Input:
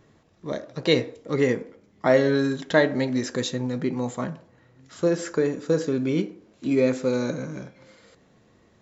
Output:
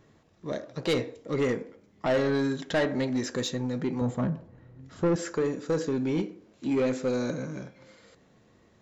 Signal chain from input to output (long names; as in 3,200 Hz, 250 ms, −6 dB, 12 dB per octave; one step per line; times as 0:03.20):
0:04.01–0:05.16: spectral tilt −3 dB per octave
soft clipping −18 dBFS, distortion −11 dB
level −2 dB